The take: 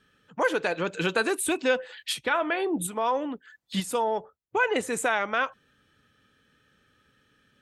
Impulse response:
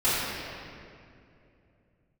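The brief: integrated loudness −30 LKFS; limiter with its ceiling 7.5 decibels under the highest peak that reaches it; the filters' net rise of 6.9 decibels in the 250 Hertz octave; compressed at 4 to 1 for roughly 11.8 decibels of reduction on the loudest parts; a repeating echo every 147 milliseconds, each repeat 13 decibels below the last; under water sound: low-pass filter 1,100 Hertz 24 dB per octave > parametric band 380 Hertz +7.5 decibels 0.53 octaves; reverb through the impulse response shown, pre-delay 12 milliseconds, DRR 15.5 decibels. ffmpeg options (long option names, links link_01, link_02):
-filter_complex "[0:a]equalizer=frequency=250:width_type=o:gain=5,acompressor=threshold=-34dB:ratio=4,alimiter=level_in=4dB:limit=-24dB:level=0:latency=1,volume=-4dB,aecho=1:1:147|294|441:0.224|0.0493|0.0108,asplit=2[link_01][link_02];[1:a]atrim=start_sample=2205,adelay=12[link_03];[link_02][link_03]afir=irnorm=-1:irlink=0,volume=-31dB[link_04];[link_01][link_04]amix=inputs=2:normalize=0,lowpass=frequency=1100:width=0.5412,lowpass=frequency=1100:width=1.3066,equalizer=frequency=380:width_type=o:width=0.53:gain=7.5,volume=6.5dB"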